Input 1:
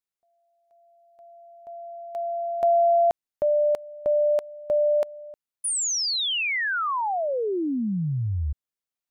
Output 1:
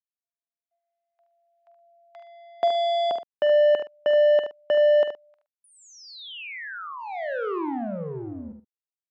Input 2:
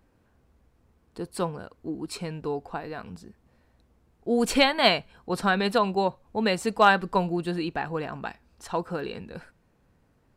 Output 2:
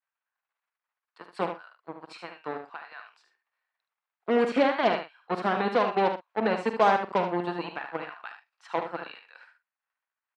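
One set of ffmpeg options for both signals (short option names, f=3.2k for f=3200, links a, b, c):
-filter_complex "[0:a]agate=range=-33dB:threshold=-58dB:ratio=3:release=37:detection=peak,acrossover=split=1000[a][b];[a]acrusher=bits=3:mix=0:aa=0.5[c];[b]acompressor=threshold=-39dB:ratio=6:attack=35:release=21:detection=rms[d];[c][d]amix=inputs=2:normalize=0,highpass=240,lowpass=2.9k,asplit=2[e][f];[f]adelay=46,volume=-12dB[g];[e][g]amix=inputs=2:normalize=0,aecho=1:1:74:0.398"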